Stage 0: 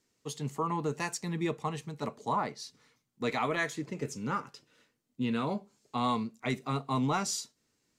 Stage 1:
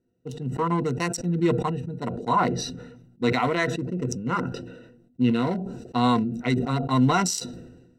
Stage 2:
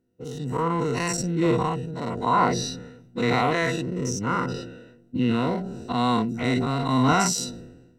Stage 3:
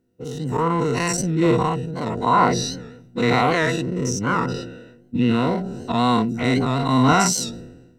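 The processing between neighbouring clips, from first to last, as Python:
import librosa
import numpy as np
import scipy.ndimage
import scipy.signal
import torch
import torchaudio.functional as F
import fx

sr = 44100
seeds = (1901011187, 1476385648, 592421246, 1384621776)

y1 = fx.wiener(x, sr, points=41)
y1 = fx.ripple_eq(y1, sr, per_octave=2.0, db=11)
y1 = fx.sustainer(y1, sr, db_per_s=50.0)
y1 = y1 * librosa.db_to_amplitude(6.5)
y2 = fx.spec_dilate(y1, sr, span_ms=120)
y2 = y2 * librosa.db_to_amplitude(-4.0)
y3 = fx.record_warp(y2, sr, rpm=78.0, depth_cents=100.0)
y3 = y3 * librosa.db_to_amplitude(4.0)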